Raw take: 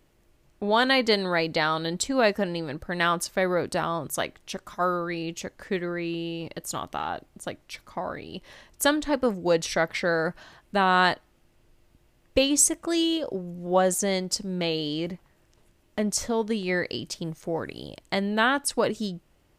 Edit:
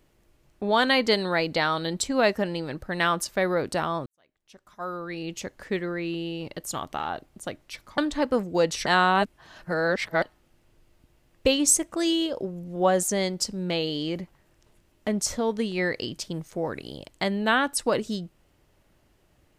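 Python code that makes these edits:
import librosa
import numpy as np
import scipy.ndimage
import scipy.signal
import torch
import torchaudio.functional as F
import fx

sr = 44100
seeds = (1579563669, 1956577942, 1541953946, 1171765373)

y = fx.edit(x, sr, fx.fade_in_span(start_s=4.06, length_s=1.31, curve='qua'),
    fx.cut(start_s=7.98, length_s=0.91),
    fx.reverse_span(start_s=9.77, length_s=1.36), tone=tone)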